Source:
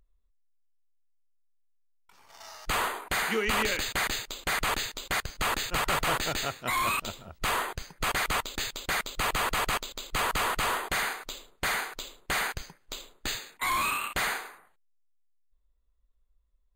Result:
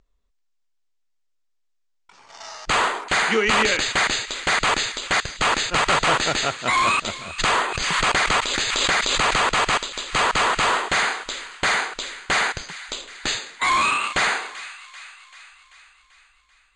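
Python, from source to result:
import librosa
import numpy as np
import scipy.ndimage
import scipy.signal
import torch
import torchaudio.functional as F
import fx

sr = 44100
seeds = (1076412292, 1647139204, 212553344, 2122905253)

y = scipy.signal.sosfilt(scipy.signal.butter(6, 7900.0, 'lowpass', fs=sr, output='sos'), x)
y = fx.low_shelf(y, sr, hz=93.0, db=-10.5)
y = fx.echo_wet_highpass(y, sr, ms=388, feedback_pct=58, hz=1600.0, wet_db=-14.0)
y = fx.pre_swell(y, sr, db_per_s=25.0, at=(7.38, 9.49), fade=0.02)
y = y * librosa.db_to_amplitude(9.0)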